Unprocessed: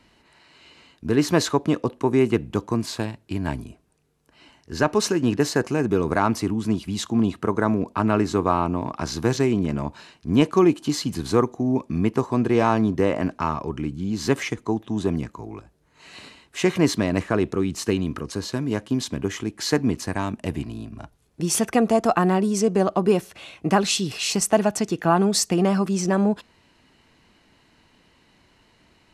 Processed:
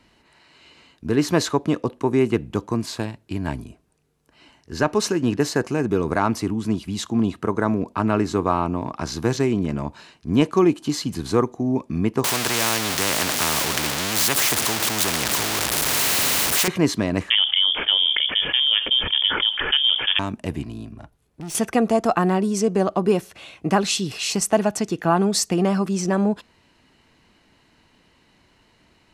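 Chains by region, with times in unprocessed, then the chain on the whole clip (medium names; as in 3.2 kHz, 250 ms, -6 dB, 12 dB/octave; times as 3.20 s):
12.24–16.68 s: jump at every zero crossing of -29 dBFS + high-pass 120 Hz + spectrum-flattening compressor 4:1
17.30–20.19 s: distance through air 320 m + frequency inversion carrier 3.4 kHz + level flattener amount 70%
20.93–21.55 s: peaking EQ 5.8 kHz -4 dB 1.2 oct + valve stage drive 30 dB, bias 0.45
whole clip: none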